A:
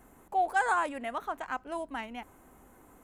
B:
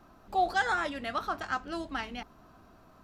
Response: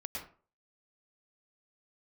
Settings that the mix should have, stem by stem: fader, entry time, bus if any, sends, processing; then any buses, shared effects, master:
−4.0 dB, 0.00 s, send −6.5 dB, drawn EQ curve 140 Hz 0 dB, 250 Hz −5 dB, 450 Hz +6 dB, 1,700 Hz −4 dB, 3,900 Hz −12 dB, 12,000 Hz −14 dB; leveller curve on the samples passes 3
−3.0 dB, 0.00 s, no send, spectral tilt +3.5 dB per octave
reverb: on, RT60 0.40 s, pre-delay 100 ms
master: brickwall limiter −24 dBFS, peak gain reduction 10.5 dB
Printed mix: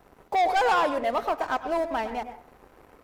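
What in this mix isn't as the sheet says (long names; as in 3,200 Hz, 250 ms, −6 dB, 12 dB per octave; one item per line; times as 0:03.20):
stem B −3.0 dB → −10.5 dB
master: missing brickwall limiter −24 dBFS, peak gain reduction 10.5 dB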